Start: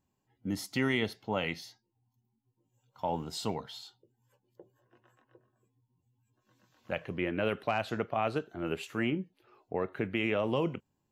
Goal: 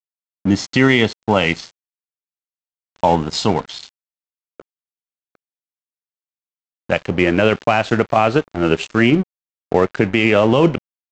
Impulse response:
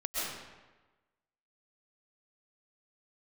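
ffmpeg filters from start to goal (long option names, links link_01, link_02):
-af "aresample=16000,aeval=exprs='sgn(val(0))*max(abs(val(0))-0.00398,0)':channel_layout=same,aresample=44100,alimiter=level_in=20.5dB:limit=-1dB:release=50:level=0:latency=1,volume=-1dB"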